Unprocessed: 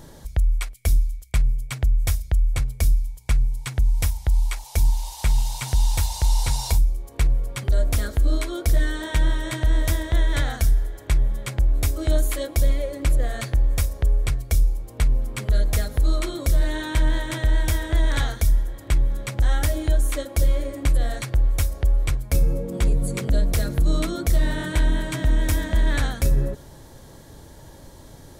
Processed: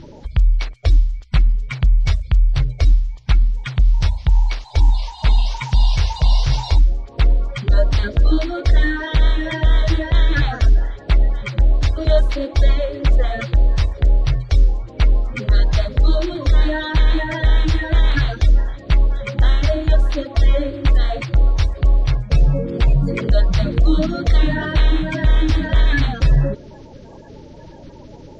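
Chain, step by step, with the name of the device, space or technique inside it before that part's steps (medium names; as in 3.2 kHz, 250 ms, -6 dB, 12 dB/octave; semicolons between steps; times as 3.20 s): clip after many re-uploads (low-pass 4.4 kHz 24 dB/octave; coarse spectral quantiser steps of 30 dB); trim +6 dB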